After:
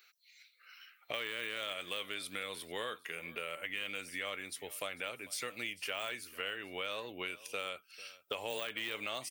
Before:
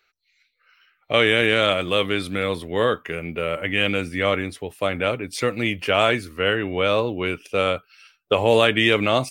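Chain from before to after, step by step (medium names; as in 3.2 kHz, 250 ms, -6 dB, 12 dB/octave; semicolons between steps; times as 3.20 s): de-esser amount 60%; tilt EQ +4 dB/octave; compression 3:1, threshold -39 dBFS, peak gain reduction 18.5 dB; on a send: delay 447 ms -19.5 dB; on the sum: trim -3 dB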